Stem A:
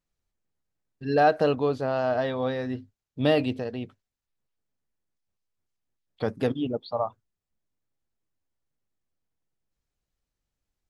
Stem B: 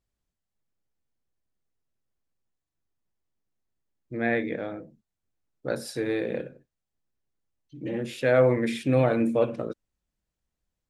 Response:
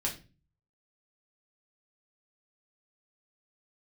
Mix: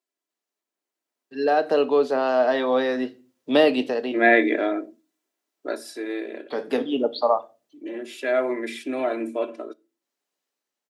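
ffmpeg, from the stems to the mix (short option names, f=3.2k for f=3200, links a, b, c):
-filter_complex "[0:a]acrossover=split=400[a][b];[b]acompressor=threshold=-33dB:ratio=1.5[c];[a][c]amix=inputs=2:normalize=0,adelay=300,volume=-3.5dB,asplit=2[d][e];[e]volume=-12dB[f];[1:a]aecho=1:1:3:0.72,volume=-2.5dB,afade=t=out:st=5.11:d=0.76:silence=0.237137,asplit=3[g][h][i];[h]volume=-21dB[j];[i]apad=whole_len=493528[k];[d][k]sidechaincompress=threshold=-55dB:ratio=4:attack=5.4:release=576[l];[2:a]atrim=start_sample=2205[m];[f][j]amix=inputs=2:normalize=0[n];[n][m]afir=irnorm=-1:irlink=0[o];[l][g][o]amix=inputs=3:normalize=0,highpass=f=290:w=0.5412,highpass=f=290:w=1.3066,dynaudnorm=f=710:g=5:m=12.5dB"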